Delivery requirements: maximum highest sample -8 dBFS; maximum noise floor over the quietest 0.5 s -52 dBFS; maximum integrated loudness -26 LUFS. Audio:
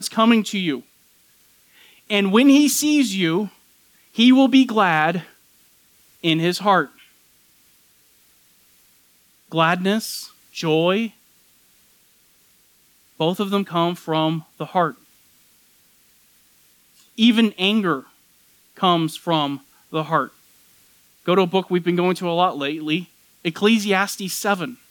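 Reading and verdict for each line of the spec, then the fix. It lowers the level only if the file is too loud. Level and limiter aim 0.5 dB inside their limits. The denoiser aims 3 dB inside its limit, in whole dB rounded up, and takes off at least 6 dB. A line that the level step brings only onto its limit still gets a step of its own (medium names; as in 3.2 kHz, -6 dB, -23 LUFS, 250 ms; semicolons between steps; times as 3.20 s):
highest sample -4.0 dBFS: fail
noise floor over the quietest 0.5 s -58 dBFS: pass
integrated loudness -19.5 LUFS: fail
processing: trim -7 dB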